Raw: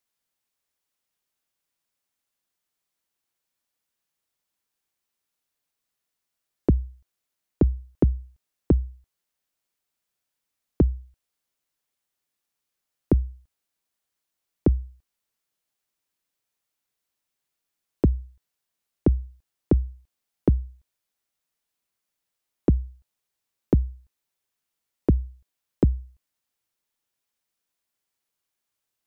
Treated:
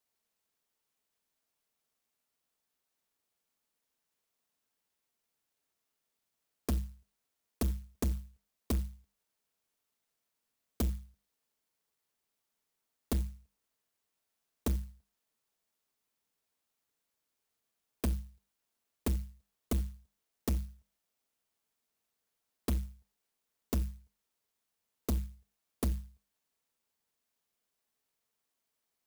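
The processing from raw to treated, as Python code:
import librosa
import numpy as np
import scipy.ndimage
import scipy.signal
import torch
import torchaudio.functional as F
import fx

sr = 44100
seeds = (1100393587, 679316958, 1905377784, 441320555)

y = scipy.signal.sosfilt(scipy.signal.butter(2, 79.0, 'highpass', fs=sr, output='sos'), x)
y = fx.peak_eq(y, sr, hz=160.0, db=-6.0, octaves=0.55)
y = fx.hum_notches(y, sr, base_hz=50, count=4)
y = y + 0.64 * np.pad(y, (int(4.5 * sr / 1000.0), 0))[:len(y)]
y = np.clip(y, -10.0 ** (-26.0 / 20.0), 10.0 ** (-26.0 / 20.0))
y = fx.clock_jitter(y, sr, seeds[0], jitter_ms=0.15)
y = y * librosa.db_to_amplitude(-1.5)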